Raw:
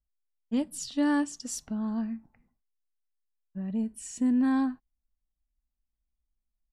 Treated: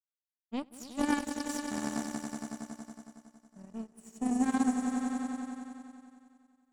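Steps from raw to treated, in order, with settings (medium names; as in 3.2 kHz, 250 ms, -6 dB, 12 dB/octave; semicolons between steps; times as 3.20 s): echo with a slow build-up 92 ms, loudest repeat 5, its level -7 dB; power-law waveshaper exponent 2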